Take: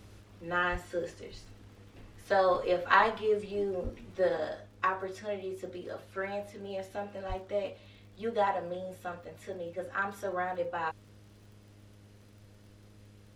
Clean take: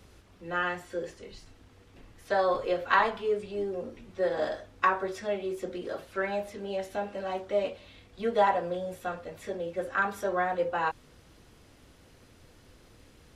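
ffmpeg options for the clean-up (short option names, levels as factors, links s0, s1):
-filter_complex "[0:a]adeclick=t=4,bandreject=f=102.9:t=h:w=4,bandreject=f=205.8:t=h:w=4,bandreject=f=308.7:t=h:w=4,bandreject=f=411.6:t=h:w=4,bandreject=f=514.5:t=h:w=4,bandreject=f=617.4:t=h:w=4,asplit=3[s0][s1][s2];[s0]afade=t=out:st=0.71:d=0.02[s3];[s1]highpass=f=140:w=0.5412,highpass=f=140:w=1.3066,afade=t=in:st=0.71:d=0.02,afade=t=out:st=0.83:d=0.02[s4];[s2]afade=t=in:st=0.83:d=0.02[s5];[s3][s4][s5]amix=inputs=3:normalize=0,asplit=3[s6][s7][s8];[s6]afade=t=out:st=3.83:d=0.02[s9];[s7]highpass=f=140:w=0.5412,highpass=f=140:w=1.3066,afade=t=in:st=3.83:d=0.02,afade=t=out:st=3.95:d=0.02[s10];[s8]afade=t=in:st=3.95:d=0.02[s11];[s9][s10][s11]amix=inputs=3:normalize=0,asplit=3[s12][s13][s14];[s12]afade=t=out:st=7.28:d=0.02[s15];[s13]highpass=f=140:w=0.5412,highpass=f=140:w=1.3066,afade=t=in:st=7.28:d=0.02,afade=t=out:st=7.4:d=0.02[s16];[s14]afade=t=in:st=7.4:d=0.02[s17];[s15][s16][s17]amix=inputs=3:normalize=0,asetnsamples=n=441:p=0,asendcmd='4.37 volume volume 5dB',volume=1"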